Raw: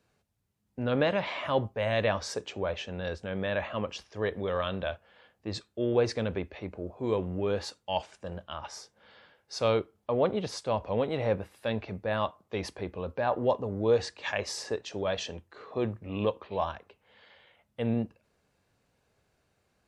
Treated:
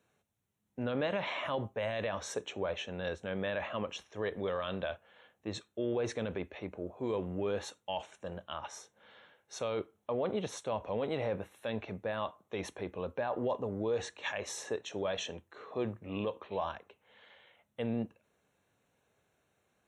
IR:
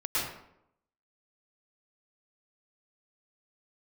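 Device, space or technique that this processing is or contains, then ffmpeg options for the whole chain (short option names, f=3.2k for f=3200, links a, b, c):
PA system with an anti-feedback notch: -af "highpass=f=150:p=1,asuperstop=centerf=4800:order=4:qfactor=3.6,alimiter=limit=-23dB:level=0:latency=1:release=36,volume=-1.5dB"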